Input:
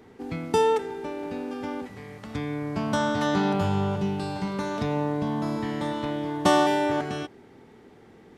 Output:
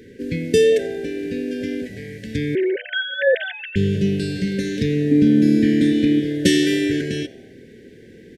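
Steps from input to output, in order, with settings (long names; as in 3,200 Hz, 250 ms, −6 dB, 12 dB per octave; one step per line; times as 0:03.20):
0:02.55–0:03.76: three sine waves on the formant tracks
0:05.11–0:06.20: hollow resonant body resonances 260/2,400 Hz, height 15 dB, ringing for 70 ms
brick-wall band-stop 570–1,500 Hz
echo with shifted repeats 89 ms, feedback 48%, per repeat +110 Hz, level −22.5 dB
level +8 dB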